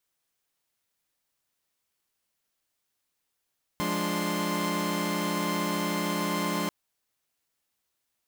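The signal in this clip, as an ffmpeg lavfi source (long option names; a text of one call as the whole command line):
ffmpeg -f lavfi -i "aevalsrc='0.0316*((2*mod(174.61*t,1)-1)+(2*mod(207.65*t,1)-1)+(2*mod(293.66*t,1)-1)+(2*mod(1046.5*t,1)-1))':duration=2.89:sample_rate=44100" out.wav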